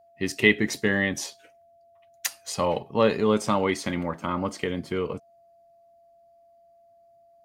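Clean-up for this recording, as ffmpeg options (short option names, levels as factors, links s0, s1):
-af "bandreject=f=680:w=30"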